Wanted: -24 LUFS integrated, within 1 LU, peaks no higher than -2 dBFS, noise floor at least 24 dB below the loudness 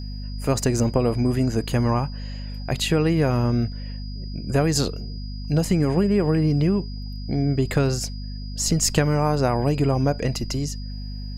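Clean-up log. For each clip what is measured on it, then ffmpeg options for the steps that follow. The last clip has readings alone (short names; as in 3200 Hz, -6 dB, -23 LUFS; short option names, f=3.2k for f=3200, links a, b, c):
hum 50 Hz; harmonics up to 250 Hz; hum level -29 dBFS; steady tone 4900 Hz; tone level -43 dBFS; loudness -22.5 LUFS; peak -4.0 dBFS; loudness target -24.0 LUFS
-> -af "bandreject=f=50:t=h:w=4,bandreject=f=100:t=h:w=4,bandreject=f=150:t=h:w=4,bandreject=f=200:t=h:w=4,bandreject=f=250:t=h:w=4"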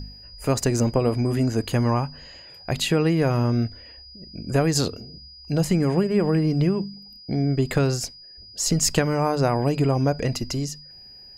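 hum none; steady tone 4900 Hz; tone level -43 dBFS
-> -af "bandreject=f=4.9k:w=30"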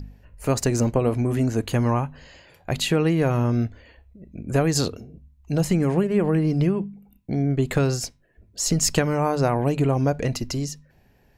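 steady tone none; loudness -23.0 LUFS; peak -5.0 dBFS; loudness target -24.0 LUFS
-> -af "volume=-1dB"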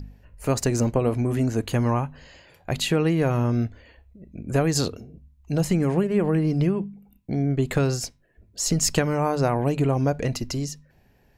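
loudness -24.0 LUFS; peak -6.0 dBFS; noise floor -60 dBFS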